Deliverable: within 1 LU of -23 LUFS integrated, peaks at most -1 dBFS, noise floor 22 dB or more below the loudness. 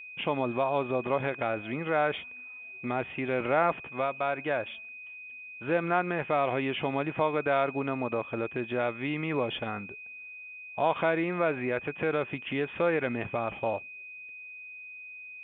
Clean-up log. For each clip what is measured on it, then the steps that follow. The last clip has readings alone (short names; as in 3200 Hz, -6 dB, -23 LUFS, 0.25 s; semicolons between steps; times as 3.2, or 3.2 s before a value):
steady tone 2500 Hz; tone level -42 dBFS; loudness -30.0 LUFS; peak -11.5 dBFS; loudness target -23.0 LUFS
-> notch 2500 Hz, Q 30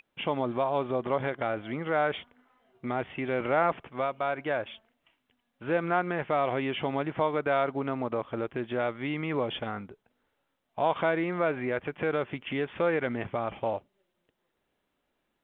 steady tone none; loudness -30.0 LUFS; peak -11.5 dBFS; loudness target -23.0 LUFS
-> gain +7 dB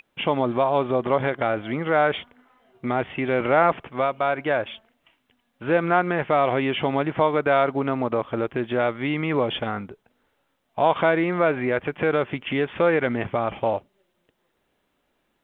loudness -23.0 LUFS; peak -4.5 dBFS; noise floor -72 dBFS